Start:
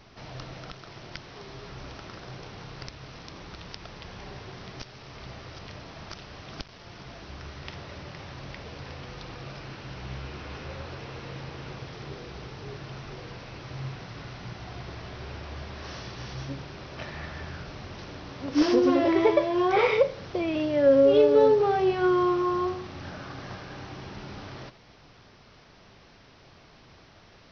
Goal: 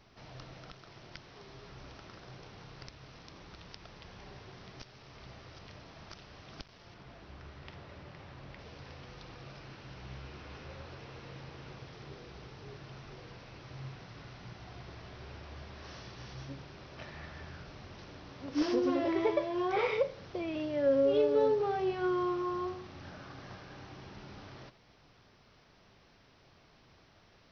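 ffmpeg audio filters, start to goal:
-filter_complex "[0:a]asettb=1/sr,asplit=3[s0][s1][s2];[s0]atrim=end=6.944[s3];[s1]atrim=start=6.94:end=8.59,asetpts=PTS-STARTPTS,afade=t=in:d=0.004:c=qsin,afade=t=out:st=1.646:d=0.004:c=qsin,aemphasis=mode=reproduction:type=50fm[s4];[s2]atrim=start=8.586[s5];[s3][s4]acrossfade=d=0.004:c1=hsin:c2=qsin[s6];[s6][s5]acrossfade=d=0.004:c1=qsin:c2=hsin,volume=0.376"

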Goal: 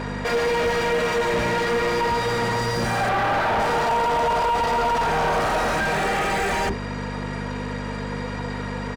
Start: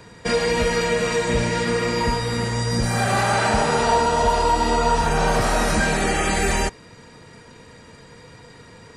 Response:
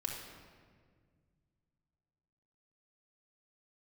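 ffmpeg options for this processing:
-filter_complex "[0:a]asettb=1/sr,asplit=3[s0][s1][s2];[s0]atrim=end=3.094[s3];[s1]atrim=start=3.09:end=3.6,asetpts=PTS-STARTPTS,afade=t=in:d=0.004:c=qsin,afade=t=out:st=0.506:d=0.004:c=qsin,lowpass=2900[s4];[s2]atrim=start=3.596[s5];[s3][s4]acrossfade=d=0.004:c1=hsin:c2=qsin[s6];[s6][s5]acrossfade=d=0.004:c1=qsin:c2=hsin,acrossover=split=320[s7][s8];[s7]adelay=40[s9];[s9][s8]amix=inputs=2:normalize=0,aeval=exprs='val(0)+0.0251*(sin(2*PI*50*n/s)+sin(2*PI*2*50*n/s)/2+sin(2*PI*3*50*n/s)/3+sin(2*PI*4*50*n/s)/4+sin(2*PI*5*50*n/s)/5)':c=same,asplit=2[s10][s11];[s11]highpass=f=720:p=1,volume=39.8,asoftclip=type=tanh:threshold=0.501[s12];[s10][s12]amix=inputs=2:normalize=0,lowpass=f=1000:p=1,volume=0.501,asplit=2[s13][s14];[s14]volume=11.2,asoftclip=hard,volume=0.0891,volume=0.562[s15];[s13][s15]amix=inputs=2:normalize=0,volume=0.398"

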